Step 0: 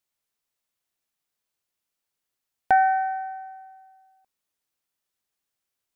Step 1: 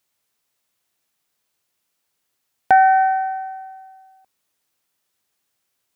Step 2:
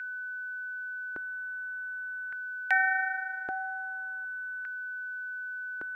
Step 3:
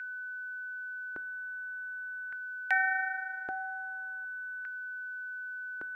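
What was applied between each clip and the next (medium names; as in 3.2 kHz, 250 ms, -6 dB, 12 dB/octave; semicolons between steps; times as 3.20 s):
high-pass 62 Hz; in parallel at +2 dB: peak limiter -20.5 dBFS, peak gain reduction 10.5 dB; on the sum: trim +2.5 dB
whistle 1.5 kHz -30 dBFS; LFO high-pass square 0.43 Hz 350–2000 Hz; trim -5 dB
feedback comb 56 Hz, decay 0.47 s, harmonics all, mix 30%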